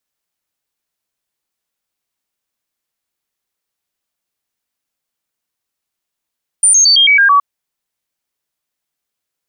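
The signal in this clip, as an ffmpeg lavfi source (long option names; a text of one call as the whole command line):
ffmpeg -f lavfi -i "aevalsrc='0.531*clip(min(mod(t,0.11),0.11-mod(t,0.11))/0.005,0,1)*sin(2*PI*9100*pow(2,-floor(t/0.11)/2)*mod(t,0.11))':duration=0.77:sample_rate=44100" out.wav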